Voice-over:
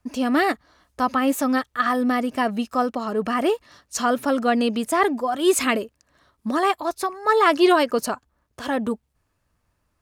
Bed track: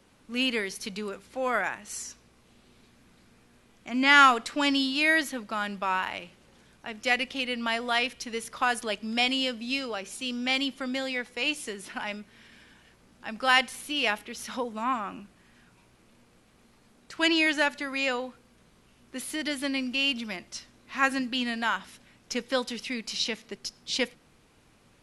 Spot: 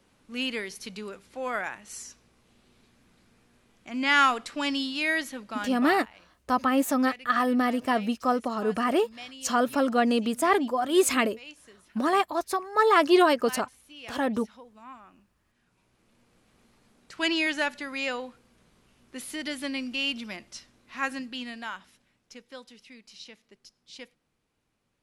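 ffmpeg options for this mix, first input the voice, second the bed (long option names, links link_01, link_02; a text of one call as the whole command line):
ffmpeg -i stem1.wav -i stem2.wav -filter_complex "[0:a]adelay=5500,volume=-3dB[link_01];[1:a]volume=11.5dB,afade=type=out:start_time=5.61:duration=0.44:silence=0.199526,afade=type=in:start_time=15.45:duration=1.09:silence=0.177828,afade=type=out:start_time=20.31:duration=2.1:silence=0.199526[link_02];[link_01][link_02]amix=inputs=2:normalize=0" out.wav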